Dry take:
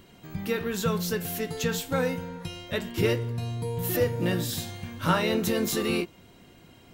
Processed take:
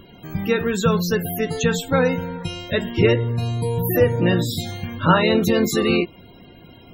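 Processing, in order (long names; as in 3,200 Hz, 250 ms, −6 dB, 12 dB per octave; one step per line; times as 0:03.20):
spectral peaks only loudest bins 64
level +8.5 dB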